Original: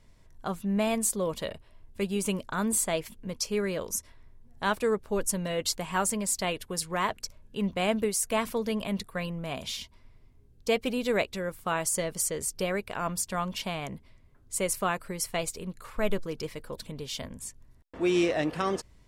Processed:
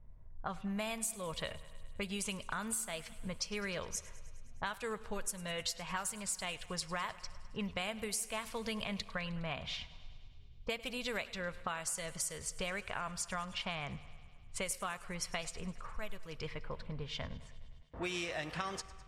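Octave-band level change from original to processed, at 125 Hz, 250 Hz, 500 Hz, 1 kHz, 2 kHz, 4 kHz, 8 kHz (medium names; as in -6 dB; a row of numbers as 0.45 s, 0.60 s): -8.5 dB, -12.5 dB, -13.0 dB, -9.0 dB, -5.5 dB, -5.0 dB, -9.0 dB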